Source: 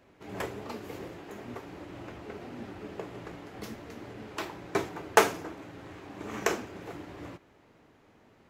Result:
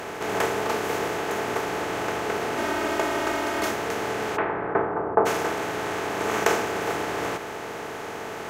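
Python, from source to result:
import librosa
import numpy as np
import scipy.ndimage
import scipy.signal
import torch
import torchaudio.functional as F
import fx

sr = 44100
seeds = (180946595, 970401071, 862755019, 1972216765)

y = fx.bin_compress(x, sr, power=0.4)
y = fx.comb(y, sr, ms=3.2, depth=0.78, at=(2.57, 3.71))
y = fx.lowpass(y, sr, hz=fx.line((4.36, 2300.0), (5.25, 1100.0)), slope=24, at=(4.36, 5.25), fade=0.02)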